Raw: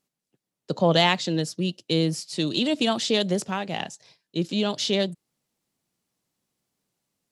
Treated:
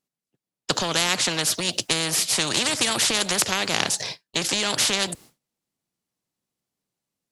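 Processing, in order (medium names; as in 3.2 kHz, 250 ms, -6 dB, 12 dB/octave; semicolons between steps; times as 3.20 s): compression 2:1, threshold -25 dBFS, peak gain reduction 6.5 dB; expander -48 dBFS; spectrum-flattening compressor 4:1; trim +9 dB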